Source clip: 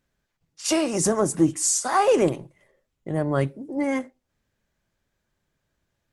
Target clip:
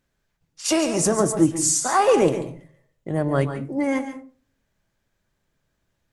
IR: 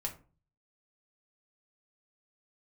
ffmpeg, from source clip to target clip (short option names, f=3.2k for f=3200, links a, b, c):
-filter_complex "[0:a]asplit=2[a][b];[1:a]atrim=start_sample=2205,adelay=138[c];[b][c]afir=irnorm=-1:irlink=0,volume=-9.5dB[d];[a][d]amix=inputs=2:normalize=0,volume=1.5dB"